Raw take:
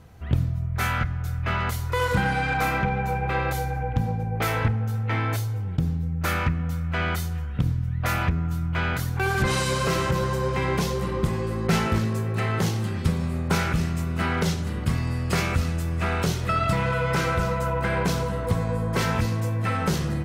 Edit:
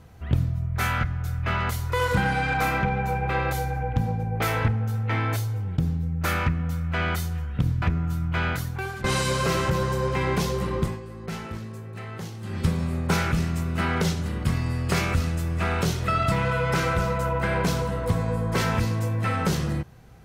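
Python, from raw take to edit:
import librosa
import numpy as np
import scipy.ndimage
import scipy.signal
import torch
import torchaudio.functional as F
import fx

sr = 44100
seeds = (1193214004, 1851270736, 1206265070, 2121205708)

y = fx.edit(x, sr, fx.cut(start_s=7.82, length_s=0.41),
    fx.fade_out_to(start_s=8.89, length_s=0.56, floor_db=-16.0),
    fx.fade_down_up(start_s=11.14, length_s=1.95, db=-11.5, fade_s=0.27, curve='qsin'), tone=tone)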